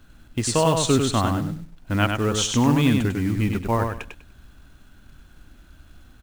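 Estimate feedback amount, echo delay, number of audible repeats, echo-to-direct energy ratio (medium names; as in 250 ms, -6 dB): 21%, 99 ms, 3, -5.0 dB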